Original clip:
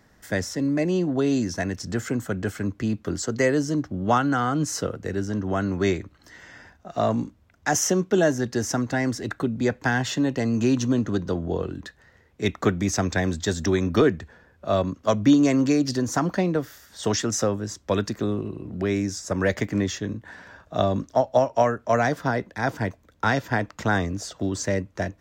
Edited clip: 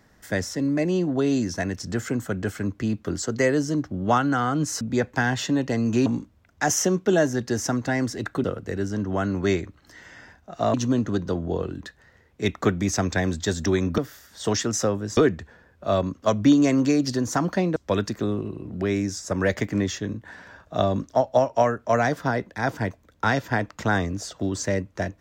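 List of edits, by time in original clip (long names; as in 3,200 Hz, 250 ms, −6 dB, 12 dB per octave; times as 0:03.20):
0:04.81–0:07.11: swap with 0:09.49–0:10.74
0:16.57–0:17.76: move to 0:13.98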